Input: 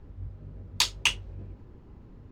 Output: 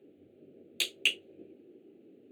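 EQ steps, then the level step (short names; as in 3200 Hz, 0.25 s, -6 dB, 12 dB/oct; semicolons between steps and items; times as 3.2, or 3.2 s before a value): ladder high-pass 290 Hz, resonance 45%; band shelf 1400 Hz -11 dB 1.3 oct; fixed phaser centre 2300 Hz, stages 4; +8.5 dB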